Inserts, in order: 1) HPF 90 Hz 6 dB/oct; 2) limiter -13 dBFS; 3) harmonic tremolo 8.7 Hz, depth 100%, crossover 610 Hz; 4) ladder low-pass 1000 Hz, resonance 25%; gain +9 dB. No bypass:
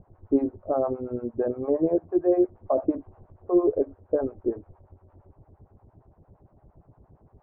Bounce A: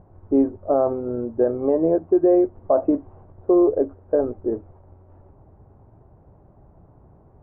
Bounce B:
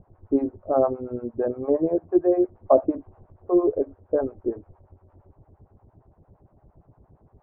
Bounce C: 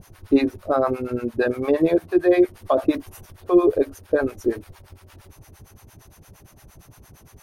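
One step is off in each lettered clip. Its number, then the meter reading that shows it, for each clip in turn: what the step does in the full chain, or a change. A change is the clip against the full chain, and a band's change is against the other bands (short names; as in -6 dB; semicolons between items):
3, crest factor change -3.5 dB; 2, crest factor change +2.5 dB; 4, 1 kHz band +1.5 dB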